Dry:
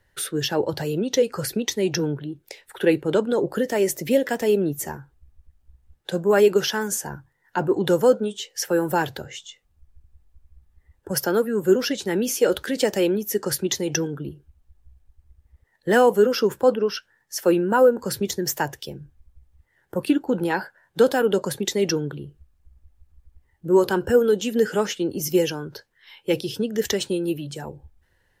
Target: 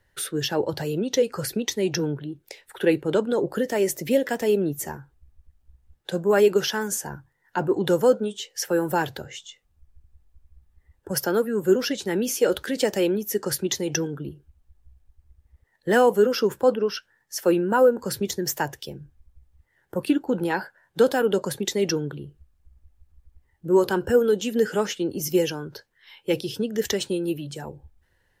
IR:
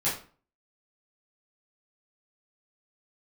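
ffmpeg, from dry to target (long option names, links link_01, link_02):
-af "volume=-1.5dB"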